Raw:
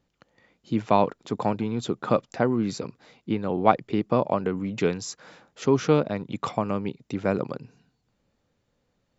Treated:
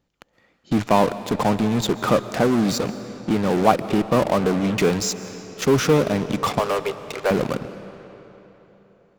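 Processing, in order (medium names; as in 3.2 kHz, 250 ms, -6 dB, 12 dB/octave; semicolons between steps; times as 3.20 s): 6.59–7.31 s: steep high-pass 380 Hz 96 dB/octave; in parallel at -9 dB: fuzz box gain 40 dB, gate -39 dBFS; on the sum: algorithmic reverb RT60 3.7 s, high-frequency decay 0.8×, pre-delay 95 ms, DRR 13 dB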